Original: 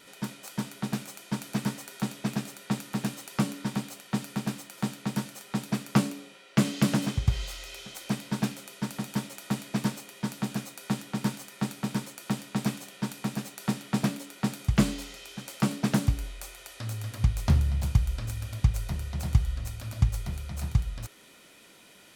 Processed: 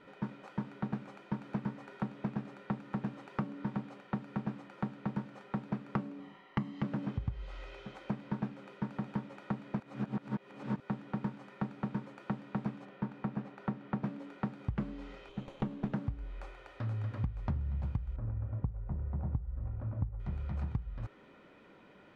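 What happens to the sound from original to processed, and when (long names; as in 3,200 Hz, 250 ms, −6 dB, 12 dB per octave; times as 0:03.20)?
0:06.20–0:06.82: comb filter 1 ms
0:09.80–0:10.80: reverse
0:12.85–0:14.03: high-shelf EQ 4,800 Hz −11.5 dB
0:15.29–0:15.93: lower of the sound and its delayed copy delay 0.3 ms
0:18.16–0:20.20: low-pass filter 1,000 Hz
whole clip: low-pass filter 1,400 Hz 12 dB per octave; notch filter 680 Hz, Q 12; downward compressor 6 to 1, threshold −33 dBFS; level +1 dB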